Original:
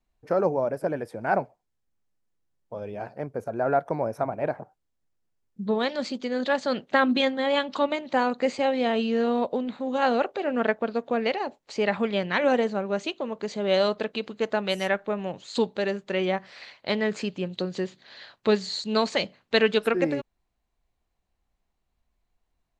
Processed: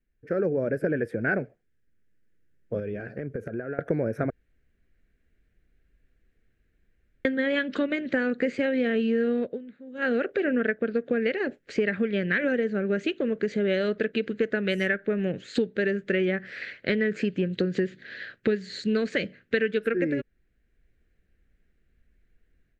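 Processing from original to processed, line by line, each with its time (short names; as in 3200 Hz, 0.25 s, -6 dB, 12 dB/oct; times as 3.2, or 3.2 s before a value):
2.79–3.79 compressor 12:1, threshold -37 dBFS
4.3–7.25 room tone
9.31–10.23 dip -22.5 dB, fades 0.28 s
whole clip: AGC gain up to 11 dB; EQ curve 470 Hz 0 dB, 950 Hz -26 dB, 1600 Hz +4 dB, 4300 Hz -14 dB; compressor, threshold -22 dBFS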